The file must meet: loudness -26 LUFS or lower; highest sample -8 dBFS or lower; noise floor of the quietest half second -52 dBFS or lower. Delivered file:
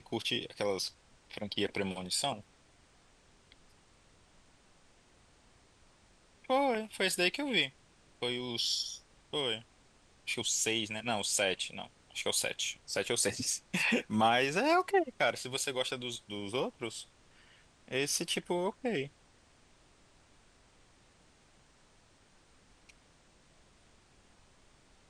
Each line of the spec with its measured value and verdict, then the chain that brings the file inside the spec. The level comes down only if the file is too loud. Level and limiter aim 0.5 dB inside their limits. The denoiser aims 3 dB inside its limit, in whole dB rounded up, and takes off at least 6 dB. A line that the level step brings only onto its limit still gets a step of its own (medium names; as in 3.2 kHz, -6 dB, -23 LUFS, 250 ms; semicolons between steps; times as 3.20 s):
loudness -33.0 LUFS: pass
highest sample -15.5 dBFS: pass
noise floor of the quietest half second -64 dBFS: pass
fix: none needed